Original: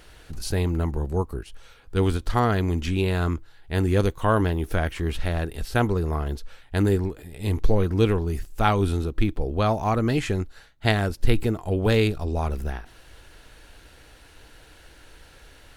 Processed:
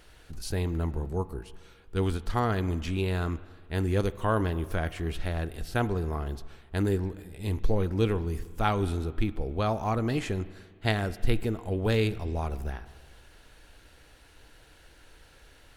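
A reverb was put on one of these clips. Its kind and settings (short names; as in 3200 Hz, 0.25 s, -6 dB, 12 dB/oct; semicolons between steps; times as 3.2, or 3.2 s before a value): spring tank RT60 1.7 s, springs 36/43 ms, chirp 50 ms, DRR 15.5 dB; gain -5.5 dB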